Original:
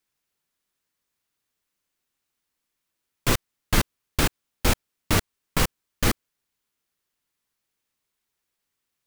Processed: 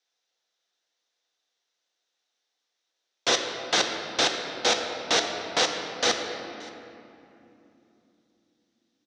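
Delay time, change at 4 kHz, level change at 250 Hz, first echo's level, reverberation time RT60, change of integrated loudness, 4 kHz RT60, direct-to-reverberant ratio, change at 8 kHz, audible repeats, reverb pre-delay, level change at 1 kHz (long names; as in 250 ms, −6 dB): 576 ms, +6.5 dB, −7.0 dB, −22.0 dB, 3.0 s, +1.0 dB, 1.7 s, 3.5 dB, +1.0 dB, 1, 3 ms, +2.5 dB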